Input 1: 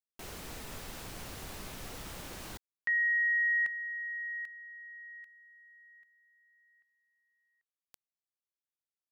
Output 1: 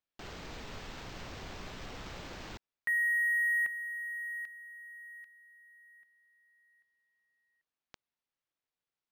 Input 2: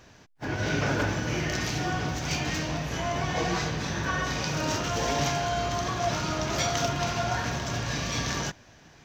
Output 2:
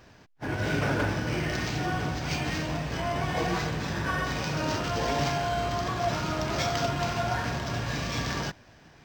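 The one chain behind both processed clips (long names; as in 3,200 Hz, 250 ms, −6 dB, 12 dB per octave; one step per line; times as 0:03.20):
linearly interpolated sample-rate reduction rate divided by 4×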